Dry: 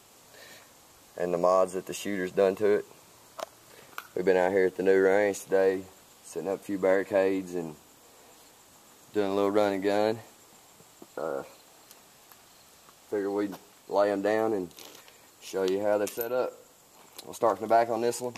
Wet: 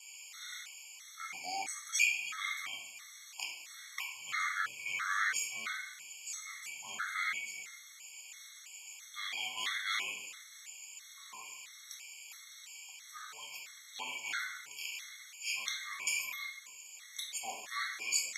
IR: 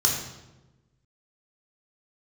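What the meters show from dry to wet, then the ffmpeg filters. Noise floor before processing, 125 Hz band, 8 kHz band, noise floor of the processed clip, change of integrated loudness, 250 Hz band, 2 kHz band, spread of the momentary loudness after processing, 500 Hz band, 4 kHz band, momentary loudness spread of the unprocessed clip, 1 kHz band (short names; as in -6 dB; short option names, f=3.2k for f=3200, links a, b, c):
-57 dBFS, under -30 dB, +6.0 dB, -54 dBFS, -10.0 dB, under -30 dB, +1.5 dB, 16 LU, -37.5 dB, +5.5 dB, 19 LU, -11.0 dB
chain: -filter_complex "[1:a]atrim=start_sample=2205,asetrate=48510,aresample=44100[a];[0:a][a]afir=irnorm=-1:irlink=0,afreqshift=-350,highpass=f=2.3k:t=q:w=5.4,afftfilt=real='re*gt(sin(2*PI*1.5*pts/sr)*(1-2*mod(floor(b*sr/1024/1100),2)),0)':imag='im*gt(sin(2*PI*1.5*pts/sr)*(1-2*mod(floor(b*sr/1024/1100),2)),0)':win_size=1024:overlap=0.75,volume=-7dB"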